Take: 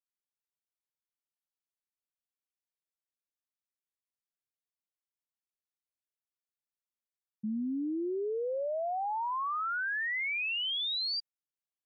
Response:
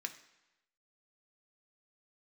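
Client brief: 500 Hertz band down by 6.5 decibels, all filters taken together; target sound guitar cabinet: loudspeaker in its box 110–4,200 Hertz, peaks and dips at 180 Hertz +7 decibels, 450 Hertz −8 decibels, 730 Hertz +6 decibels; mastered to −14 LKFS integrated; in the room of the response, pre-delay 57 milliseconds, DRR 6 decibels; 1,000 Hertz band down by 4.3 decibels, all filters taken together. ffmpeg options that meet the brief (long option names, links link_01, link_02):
-filter_complex "[0:a]equalizer=frequency=500:width_type=o:gain=-5,equalizer=frequency=1000:width_type=o:gain=-7,asplit=2[link_01][link_02];[1:a]atrim=start_sample=2205,adelay=57[link_03];[link_02][link_03]afir=irnorm=-1:irlink=0,volume=-5dB[link_04];[link_01][link_04]amix=inputs=2:normalize=0,highpass=110,equalizer=frequency=180:width_type=q:width=4:gain=7,equalizer=frequency=450:width_type=q:width=4:gain=-8,equalizer=frequency=730:width_type=q:width=4:gain=6,lowpass=frequency=4200:width=0.5412,lowpass=frequency=4200:width=1.3066,volume=20dB"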